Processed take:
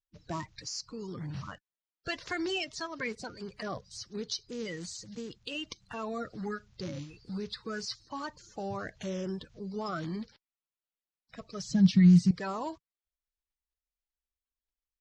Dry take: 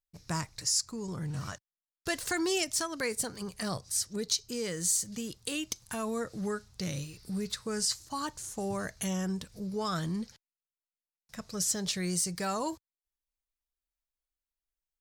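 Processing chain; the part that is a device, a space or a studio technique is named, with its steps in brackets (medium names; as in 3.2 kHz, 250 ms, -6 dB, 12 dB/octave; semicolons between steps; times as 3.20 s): clip after many re-uploads (low-pass 4.9 kHz 24 dB/octave; coarse spectral quantiser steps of 30 dB); 11.69–12.31 s: resonant low shelf 280 Hz +13 dB, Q 3; trim -2 dB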